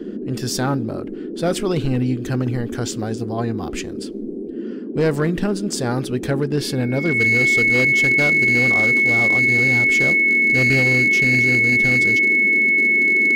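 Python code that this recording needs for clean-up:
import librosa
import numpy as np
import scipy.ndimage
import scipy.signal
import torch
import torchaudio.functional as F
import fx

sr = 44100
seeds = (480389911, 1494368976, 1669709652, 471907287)

y = fx.fix_declip(x, sr, threshold_db=-11.5)
y = fx.notch(y, sr, hz=2200.0, q=30.0)
y = fx.noise_reduce(y, sr, print_start_s=4.06, print_end_s=4.56, reduce_db=30.0)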